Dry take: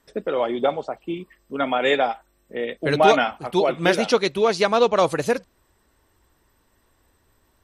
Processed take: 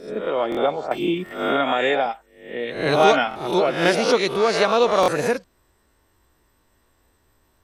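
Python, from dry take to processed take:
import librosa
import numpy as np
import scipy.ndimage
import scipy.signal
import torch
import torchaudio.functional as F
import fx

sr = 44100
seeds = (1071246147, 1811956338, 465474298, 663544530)

y = fx.spec_swells(x, sr, rise_s=0.55)
y = fx.buffer_glitch(y, sr, at_s=(0.5, 1.24, 3.29, 5.01), block=1024, repeats=2)
y = fx.band_squash(y, sr, depth_pct=100, at=(0.91, 2.06))
y = y * librosa.db_to_amplitude(-1.5)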